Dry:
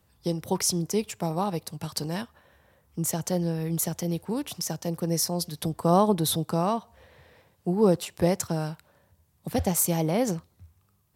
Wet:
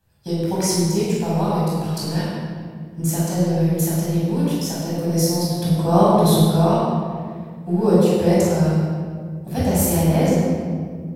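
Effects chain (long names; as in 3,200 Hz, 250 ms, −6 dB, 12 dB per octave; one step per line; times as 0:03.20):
in parallel at −6 dB: dead-zone distortion −41.5 dBFS
on the sum: convolution reverb RT60 1.9 s, pre-delay 15 ms, DRR −8 dB
level −8 dB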